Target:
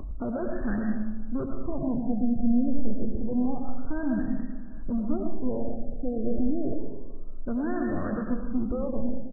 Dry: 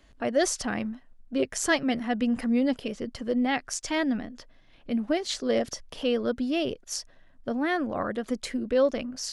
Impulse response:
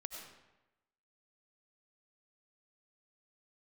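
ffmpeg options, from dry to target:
-filter_complex "[0:a]asoftclip=type=tanh:threshold=-28dB,aemphasis=mode=reproduction:type=bsi,asplit=2[a][b];[b]adelay=20,volume=-13.5dB[c];[a][c]amix=inputs=2:normalize=0,aecho=1:1:193|386|579|772:0.0794|0.0429|0.0232|0.0125[d];[1:a]atrim=start_sample=2205[e];[d][e]afir=irnorm=-1:irlink=0,acompressor=mode=upward:threshold=-31dB:ratio=2.5,equalizer=f=680:t=o:w=1.8:g=-5.5,afftfilt=real='re*lt(b*sr/1024,770*pow(1900/770,0.5+0.5*sin(2*PI*0.28*pts/sr)))':imag='im*lt(b*sr/1024,770*pow(1900/770,0.5+0.5*sin(2*PI*0.28*pts/sr)))':win_size=1024:overlap=0.75,volume=5.5dB"

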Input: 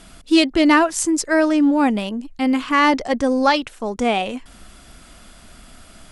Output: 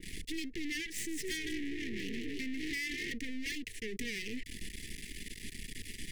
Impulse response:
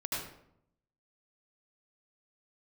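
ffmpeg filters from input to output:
-filter_complex "[0:a]asettb=1/sr,asplit=3[a][b][c];[a]atrim=end=0.924[d];[b]atrim=start=0.92:end=3.12,asetpts=PTS-STARTPTS,afade=t=in:d=0.004:c=qsin,afade=t=out:st=2.196:d=0.004:c=qsin,asplit=6[e][f][g][h][i][j];[f]adelay=156,afreqshift=50,volume=-7.5dB[k];[g]adelay=312,afreqshift=100,volume=-15.5dB[l];[h]adelay=468,afreqshift=150,volume=-23.4dB[m];[i]adelay=624,afreqshift=200,volume=-31.4dB[n];[j]adelay=780,afreqshift=250,volume=-39.3dB[o];[e][k][l][m][n][o]amix=inputs=6:normalize=0,atrim=end_sample=97020[p];[c]atrim=start=3.116[q];[d][p]acrossfade=d=0.004:c1=hsin:c2=qsin[r];[r][q]acrossfade=d=0.004:c1=qsin:c2=hsin,aeval=exprs='max(val(0),0)':c=same,acompressor=threshold=-28dB:ratio=16,equalizer=f=1.6k:w=1.4:g=10.5,bandreject=f=50:t=h:w=6,bandreject=f=100:t=h:w=6,aeval=exprs='(tanh(56.2*val(0)+0.5)-tanh(0.5))/56.2':c=same,asuperstop=centerf=920:order=20:qfactor=0.66,adynamicequalizer=threshold=0.00158:dfrequency=2100:dqfactor=0.7:tfrequency=2100:tqfactor=0.7:attack=5:release=100:ratio=0.375:range=1.5:mode=cutabove:tftype=highshelf,volume=8.5dB"

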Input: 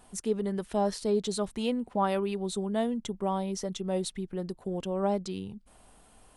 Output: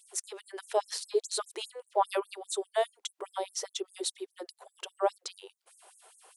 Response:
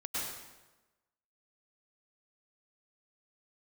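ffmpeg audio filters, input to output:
-af "afftfilt=real='re*gte(b*sr/1024,320*pow(6600/320,0.5+0.5*sin(2*PI*4.9*pts/sr)))':imag='im*gte(b*sr/1024,320*pow(6600/320,0.5+0.5*sin(2*PI*4.9*pts/sr)))':win_size=1024:overlap=0.75,volume=4dB"

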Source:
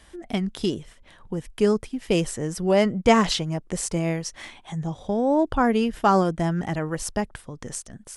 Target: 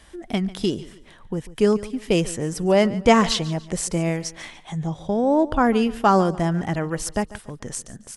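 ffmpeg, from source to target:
-af "aecho=1:1:144|288|432:0.126|0.0428|0.0146,volume=2dB"

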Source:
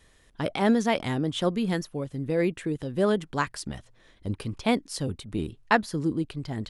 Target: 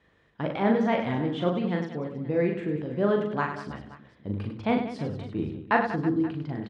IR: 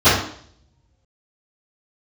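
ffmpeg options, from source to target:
-filter_complex "[0:a]highpass=100,lowpass=2.3k,aecho=1:1:40|100|190|325|527.5:0.631|0.398|0.251|0.158|0.1,asplit=2[a][b];[1:a]atrim=start_sample=2205[c];[b][c]afir=irnorm=-1:irlink=0,volume=-40dB[d];[a][d]amix=inputs=2:normalize=0,volume=-2dB"

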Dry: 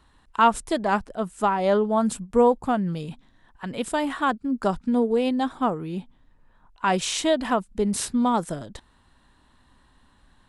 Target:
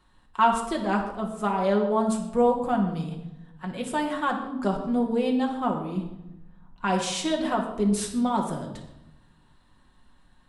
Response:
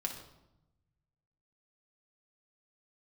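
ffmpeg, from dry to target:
-filter_complex "[0:a]asettb=1/sr,asplit=3[a][b][c];[a]atrim=end=5.984[d];[b]atrim=start=5.98:end=6.86,asetpts=PTS-STARTPTS,afade=t=in:d=0.004:c=qsin,afade=t=out:st=0.876:d=0.004:c=qsin,bass=f=250:g=7,treble=f=4k:g=-2[e];[c]atrim=start=6.856[f];[d][e]acrossfade=d=0.004:c1=hsin:c2=qsin[g];[g][f]acrossfade=d=0.004:c1=qsin:c2=hsin[h];[1:a]atrim=start_sample=2205[i];[h][i]afir=irnorm=-1:irlink=0,volume=-4dB"

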